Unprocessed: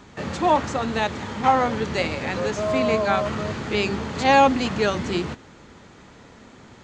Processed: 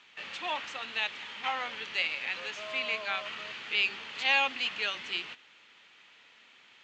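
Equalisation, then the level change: band-pass 2800 Hz, Q 2.9; +2.5 dB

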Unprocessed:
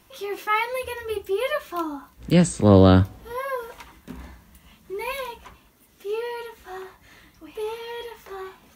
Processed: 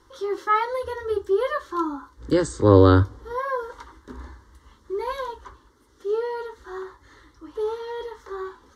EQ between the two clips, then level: LPF 5100 Hz 12 dB/oct; fixed phaser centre 680 Hz, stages 6; +4.0 dB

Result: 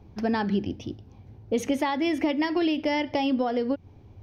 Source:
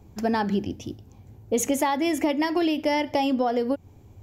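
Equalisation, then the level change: dynamic EQ 760 Hz, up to -4 dB, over -33 dBFS, Q 0.99; polynomial smoothing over 15 samples; 0.0 dB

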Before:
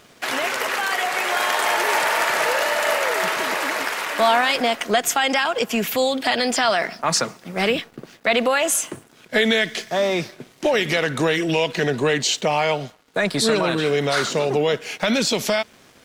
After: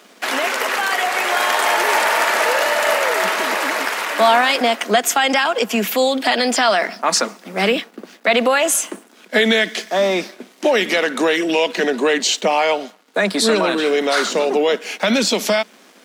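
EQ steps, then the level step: Chebyshev high-pass 190 Hz, order 6; +4.0 dB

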